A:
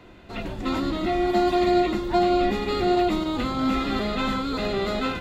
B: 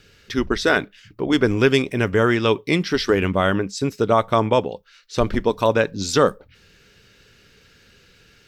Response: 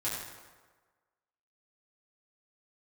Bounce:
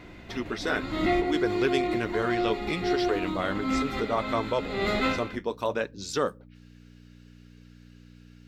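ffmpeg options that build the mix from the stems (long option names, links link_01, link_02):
-filter_complex "[0:a]equalizer=frequency=2100:width=4:gain=7.5,volume=-0.5dB,asplit=3[link_01][link_02][link_03];[link_02]volume=-20dB[link_04];[link_03]volume=-13.5dB[link_05];[1:a]flanger=delay=1.8:depth=9.8:regen=-57:speed=0.66:shape=sinusoidal,aeval=exprs='val(0)+0.0141*(sin(2*PI*60*n/s)+sin(2*PI*2*60*n/s)/2+sin(2*PI*3*60*n/s)/3+sin(2*PI*4*60*n/s)/4+sin(2*PI*5*60*n/s)/5)':channel_layout=same,highpass=frequency=180:poles=1,volume=-6dB,asplit=2[link_06][link_07];[link_07]apad=whole_len=229643[link_08];[link_01][link_08]sidechaincompress=threshold=-42dB:ratio=8:attack=5.1:release=172[link_09];[2:a]atrim=start_sample=2205[link_10];[link_04][link_10]afir=irnorm=-1:irlink=0[link_11];[link_05]aecho=0:1:160:1[link_12];[link_09][link_06][link_11][link_12]amix=inputs=4:normalize=0"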